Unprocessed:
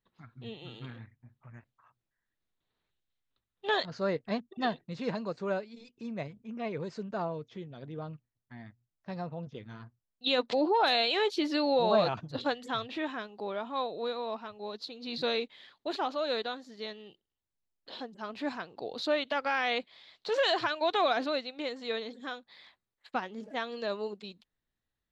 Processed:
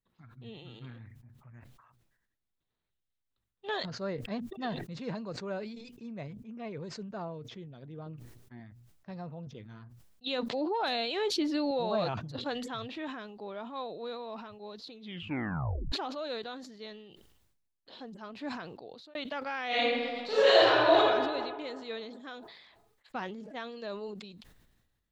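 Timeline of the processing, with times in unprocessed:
8.06–8.6 bell 370 Hz +10.5 dB
10.88–11.71 low shelf 320 Hz +8 dB
14.92 tape stop 1.00 s
18.62–19.15 fade out
19.67–20.97 reverb throw, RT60 1.7 s, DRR -11.5 dB
whole clip: low shelf 230 Hz +5.5 dB; sustainer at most 45 dB/s; gain -6.5 dB

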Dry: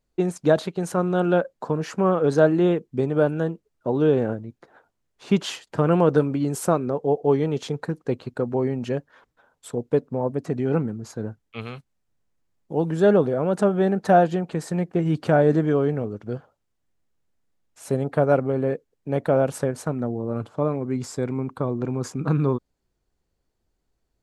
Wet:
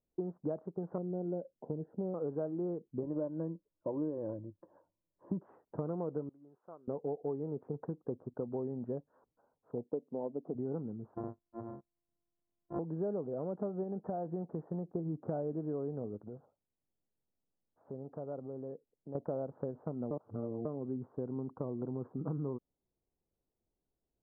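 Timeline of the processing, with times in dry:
0.98–2.14 running mean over 38 samples
3.02–5.39 ripple EQ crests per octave 1.2, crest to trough 12 dB
6.29–6.88 pre-emphasis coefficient 0.97
9.84–10.55 Butterworth band-pass 460 Hz, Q 0.54
11.15–12.79 sample sorter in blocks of 128 samples
13.83–14.91 compressor, threshold -20 dBFS
16.28–19.15 compressor 2:1, threshold -39 dBFS
20.11–20.65 reverse
whole clip: Bessel low-pass 670 Hz, order 8; low shelf 110 Hz -10.5 dB; compressor, threshold -27 dBFS; gain -6.5 dB

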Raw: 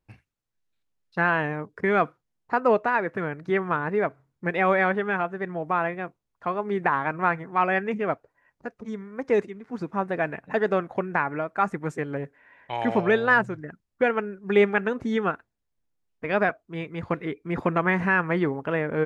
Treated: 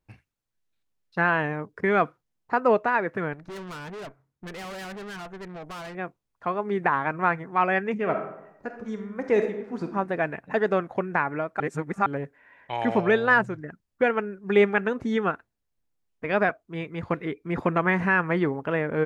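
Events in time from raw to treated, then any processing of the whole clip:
3.33–5.95 tube stage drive 36 dB, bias 0.7
7.97–9.84 reverb throw, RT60 0.84 s, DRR 5 dB
11.6–12.06 reverse

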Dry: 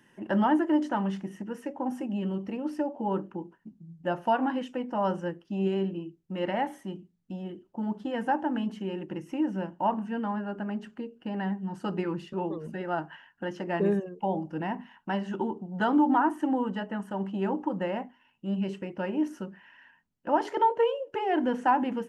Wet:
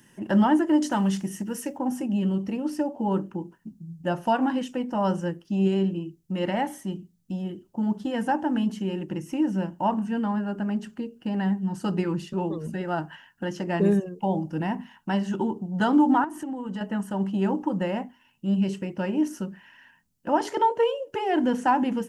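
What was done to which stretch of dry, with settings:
0.82–1.78 high shelf 3600 Hz +9 dB
16.24–16.81 compressor 5:1, threshold -34 dBFS
whole clip: tone controls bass +7 dB, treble +12 dB; gain +1.5 dB

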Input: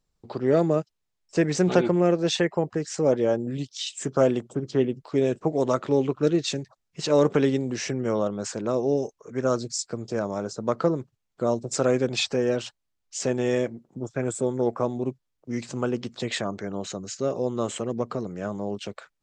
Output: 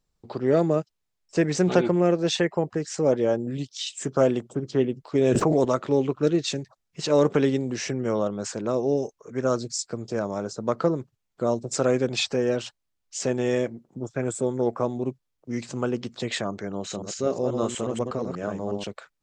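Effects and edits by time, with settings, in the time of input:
5.15–5.65 fast leveller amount 100%
16.78–18.87 reverse delay 0.121 s, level -4.5 dB

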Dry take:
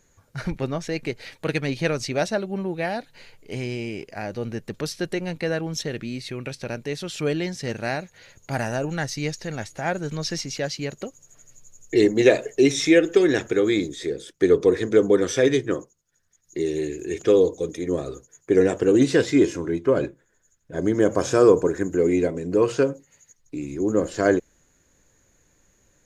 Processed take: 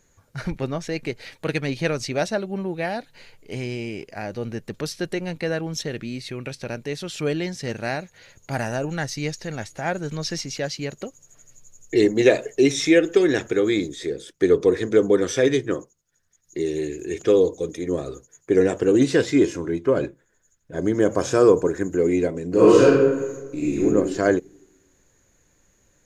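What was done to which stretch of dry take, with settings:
22.49–23.84 reverb throw, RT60 1.2 s, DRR -7.5 dB

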